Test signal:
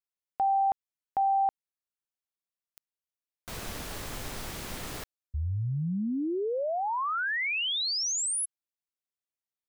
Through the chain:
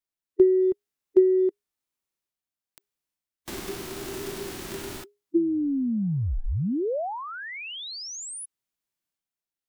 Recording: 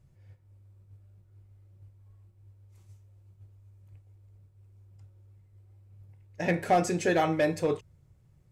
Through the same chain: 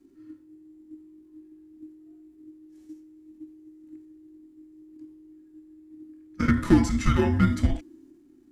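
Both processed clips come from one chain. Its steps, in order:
transient designer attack +10 dB, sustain +6 dB
harmonic and percussive parts rebalanced percussive −11 dB
frequency shifter −410 Hz
level +4 dB

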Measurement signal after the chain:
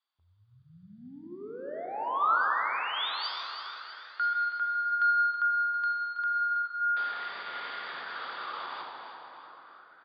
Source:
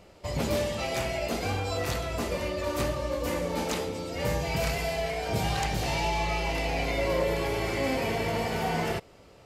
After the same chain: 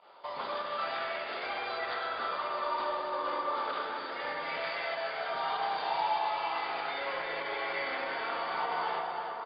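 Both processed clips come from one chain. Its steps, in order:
high-pass filter 500 Hz 12 dB per octave
in parallel at −3 dB: downward compressor, threshold −40 dBFS
on the sum: soft clipping −26 dBFS
fake sidechain pumping 97 BPM, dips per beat 1, −13 dB, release 68 ms
background noise blue −73 dBFS
Chebyshev low-pass with heavy ripple 4,800 Hz, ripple 9 dB
on a send: repeating echo 325 ms, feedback 46%, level −10 dB
on the sum: dense smooth reverb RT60 4.5 s, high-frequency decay 0.45×, DRR 0 dB
auto-filter bell 0.33 Hz 910–2,000 Hz +8 dB
level −2 dB

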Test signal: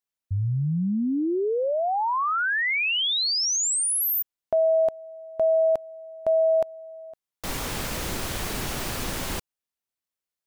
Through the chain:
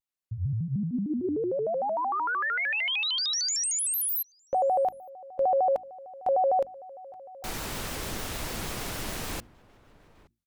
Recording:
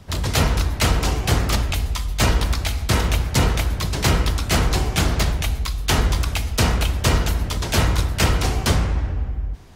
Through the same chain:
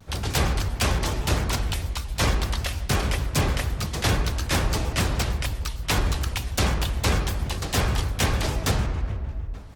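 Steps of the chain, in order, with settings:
mains-hum notches 50/100/150/200/250/300 Hz
slap from a distant wall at 150 metres, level −21 dB
pitch modulation by a square or saw wave square 6.6 Hz, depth 250 cents
level −4 dB

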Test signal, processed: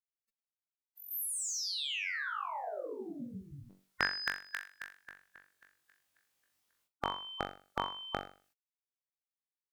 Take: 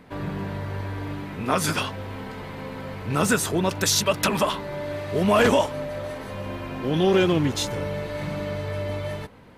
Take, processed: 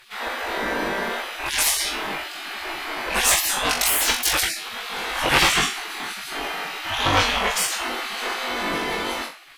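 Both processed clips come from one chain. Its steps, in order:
harmonic generator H 5 −11 dB, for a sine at −7.5 dBFS
flutter between parallel walls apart 3.6 metres, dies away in 0.38 s
gate on every frequency bin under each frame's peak −20 dB weak
level +4.5 dB

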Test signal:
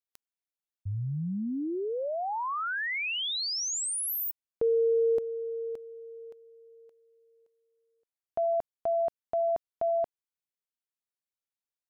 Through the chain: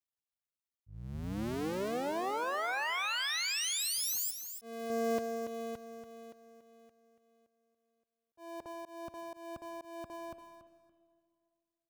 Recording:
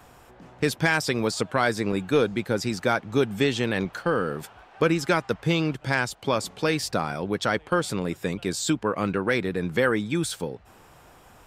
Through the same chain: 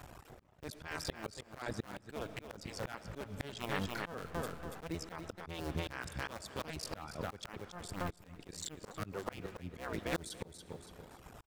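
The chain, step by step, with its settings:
sub-harmonics by changed cycles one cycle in 2, muted
reverb reduction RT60 1.1 s
parametric band 74 Hz +7.5 dB 2.1 octaves
repeating echo 284 ms, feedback 20%, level −9 dB
comb and all-pass reverb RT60 2.2 s, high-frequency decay 0.8×, pre-delay 30 ms, DRR 17 dB
volume swells 628 ms

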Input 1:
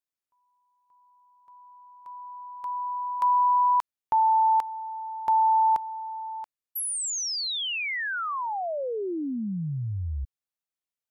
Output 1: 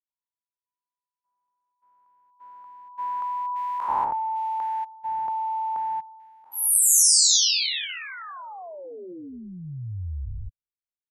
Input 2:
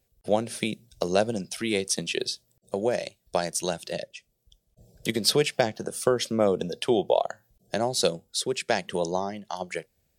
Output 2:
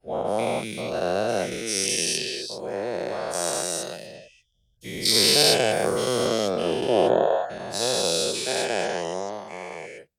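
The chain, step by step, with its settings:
every bin's largest magnitude spread in time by 480 ms
multiband upward and downward expander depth 70%
level −7.5 dB

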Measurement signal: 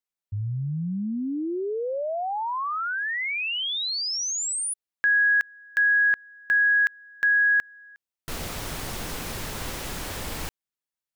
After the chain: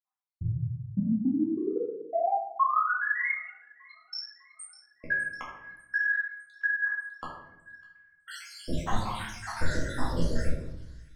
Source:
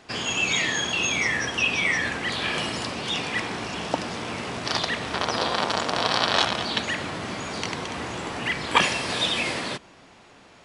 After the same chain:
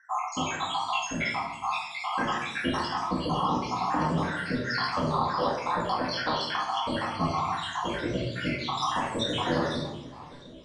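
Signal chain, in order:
time-frequency cells dropped at random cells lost 82%
graphic EQ with 15 bands 1,000 Hz +7 dB, 2,500 Hz −11 dB, 10,000 Hz +11 dB
downward compressor 6 to 1, threshold −33 dBFS
flanger 0.44 Hz, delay 8.2 ms, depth 9.9 ms, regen +43%
high-frequency loss of the air 140 metres
on a send: delay with a high-pass on its return 602 ms, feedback 56%, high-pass 2,700 Hz, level −15 dB
on the sum: rectangular room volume 240 cubic metres, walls mixed, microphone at 2.1 metres
one half of a high-frequency compander decoder only
level +8 dB

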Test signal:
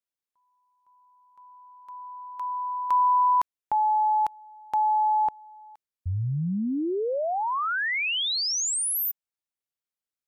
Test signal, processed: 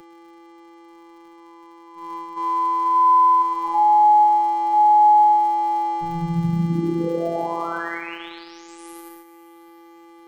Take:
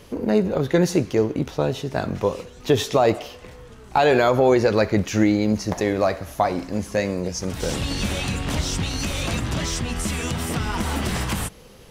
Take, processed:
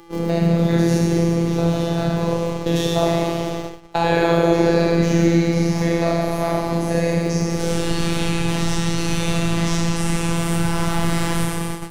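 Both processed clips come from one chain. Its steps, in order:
spectrum averaged block by block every 100 ms
delay with a high-pass on its return 632 ms, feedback 50%, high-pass 1,800 Hz, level −18 dB
four-comb reverb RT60 2.1 s, combs from 28 ms, DRR −3.5 dB
surface crackle 100 per second −35 dBFS
hum with harmonics 400 Hz, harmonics 22, −32 dBFS −9 dB per octave
dynamic equaliser 9,800 Hz, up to +4 dB, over −54 dBFS, Q 4.5
noise gate −27 dBFS, range −21 dB
phases set to zero 168 Hz
low-shelf EQ 160 Hz +8 dB
multiband upward and downward compressor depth 40%

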